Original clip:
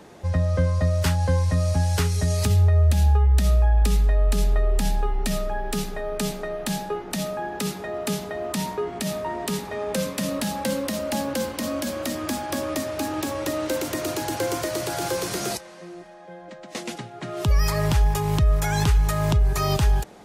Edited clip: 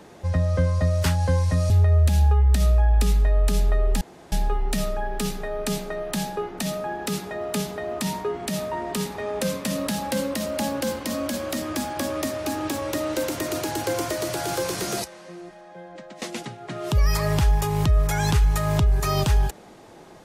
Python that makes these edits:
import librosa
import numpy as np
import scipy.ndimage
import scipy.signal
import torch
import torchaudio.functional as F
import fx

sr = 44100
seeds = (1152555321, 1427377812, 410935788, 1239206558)

y = fx.edit(x, sr, fx.cut(start_s=1.7, length_s=0.84),
    fx.insert_room_tone(at_s=4.85, length_s=0.31), tone=tone)